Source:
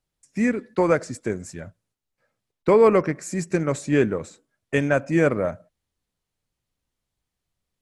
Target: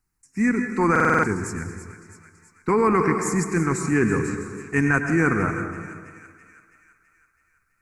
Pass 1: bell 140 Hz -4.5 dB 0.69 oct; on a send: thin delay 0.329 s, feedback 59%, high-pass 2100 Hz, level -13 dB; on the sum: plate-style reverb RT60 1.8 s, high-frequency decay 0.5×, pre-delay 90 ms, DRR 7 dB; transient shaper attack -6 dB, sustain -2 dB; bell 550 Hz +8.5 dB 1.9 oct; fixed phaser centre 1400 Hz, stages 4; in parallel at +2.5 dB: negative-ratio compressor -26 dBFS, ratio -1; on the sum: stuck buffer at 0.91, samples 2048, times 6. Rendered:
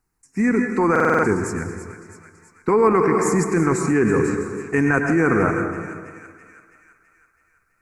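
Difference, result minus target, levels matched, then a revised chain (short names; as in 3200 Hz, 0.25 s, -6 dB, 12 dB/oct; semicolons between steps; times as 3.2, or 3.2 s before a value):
500 Hz band +3.0 dB
bell 140 Hz -4.5 dB 0.69 oct; on a send: thin delay 0.329 s, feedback 59%, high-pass 2100 Hz, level -13 dB; on the sum: plate-style reverb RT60 1.8 s, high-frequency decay 0.5×, pre-delay 90 ms, DRR 7 dB; transient shaper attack -6 dB, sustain -2 dB; fixed phaser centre 1400 Hz, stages 4; in parallel at +2.5 dB: negative-ratio compressor -26 dBFS, ratio -1; on the sum: stuck buffer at 0.91, samples 2048, times 6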